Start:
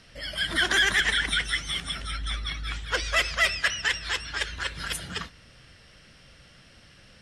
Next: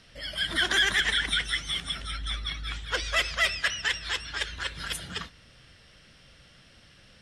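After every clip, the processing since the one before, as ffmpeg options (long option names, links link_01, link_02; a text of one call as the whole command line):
ffmpeg -i in.wav -af "equalizer=frequency=3500:width_type=o:width=0.36:gain=3.5,volume=-2.5dB" out.wav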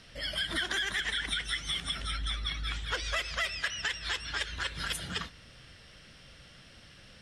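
ffmpeg -i in.wav -af "acompressor=threshold=-31dB:ratio=6,volume=1.5dB" out.wav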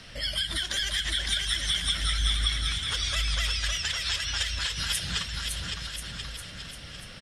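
ffmpeg -i in.wav -filter_complex "[0:a]acrossover=split=130|3000[link_01][link_02][link_03];[link_02]acompressor=threshold=-46dB:ratio=6[link_04];[link_01][link_04][link_03]amix=inputs=3:normalize=0,equalizer=frequency=390:width=1.5:gain=-2.5,aecho=1:1:560|1036|1441|1785|2077:0.631|0.398|0.251|0.158|0.1,volume=7.5dB" out.wav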